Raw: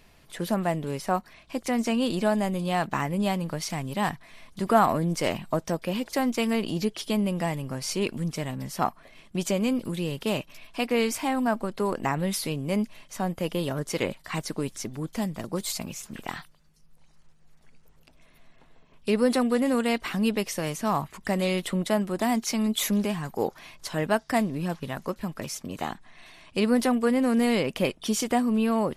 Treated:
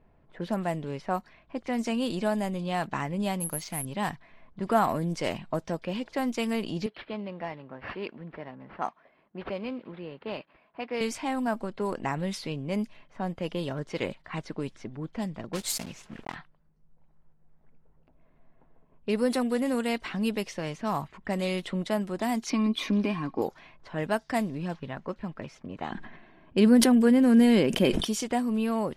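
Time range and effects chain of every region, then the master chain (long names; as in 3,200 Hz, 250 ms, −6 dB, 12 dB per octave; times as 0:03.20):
0:03.40–0:03.85: mu-law and A-law mismatch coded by A + bad sample-rate conversion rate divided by 4×, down filtered, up zero stuff
0:06.86–0:11.01: high-pass filter 160 Hz + low-shelf EQ 340 Hz −10 dB + linearly interpolated sample-rate reduction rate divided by 6×
0:15.53–0:16.36: one scale factor per block 3 bits + high-shelf EQ 6,600 Hz +10.5 dB
0:22.50–0:23.42: Savitzky-Golay smoothing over 15 samples + hollow resonant body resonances 290/1,100/2,400 Hz, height 15 dB, ringing for 65 ms
0:25.91–0:28.05: hollow resonant body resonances 220/340/1,600/3,100 Hz, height 8 dB, ringing for 25 ms + level that may fall only so fast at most 47 dB per second
whole clip: notch filter 1,200 Hz, Q 19; low-pass that shuts in the quiet parts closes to 1,000 Hz, open at −20.5 dBFS; level −3.5 dB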